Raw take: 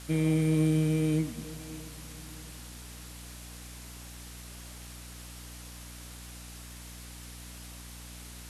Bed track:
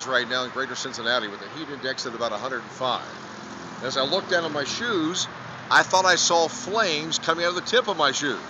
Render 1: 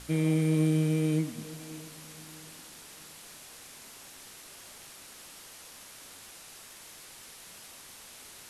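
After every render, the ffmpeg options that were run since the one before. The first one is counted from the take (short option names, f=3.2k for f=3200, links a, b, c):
-af "bandreject=f=60:t=h:w=4,bandreject=f=120:t=h:w=4,bandreject=f=180:t=h:w=4,bandreject=f=240:t=h:w=4,bandreject=f=300:t=h:w=4"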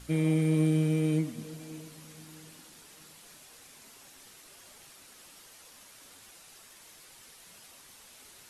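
-af "afftdn=nr=6:nf=-50"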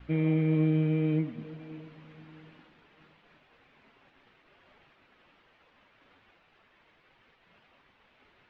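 -af "lowpass=f=2.8k:w=0.5412,lowpass=f=2.8k:w=1.3066,agate=range=-33dB:threshold=-55dB:ratio=3:detection=peak"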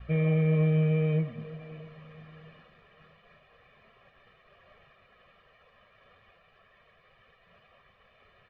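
-af "bass=f=250:g=1,treble=f=4k:g=-9,aecho=1:1:1.7:0.93"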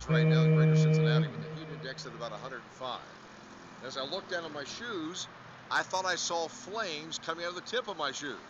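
-filter_complex "[1:a]volume=-13dB[a];[0:a][a]amix=inputs=2:normalize=0"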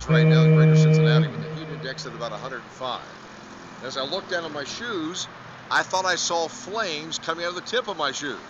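-af "volume=8.5dB"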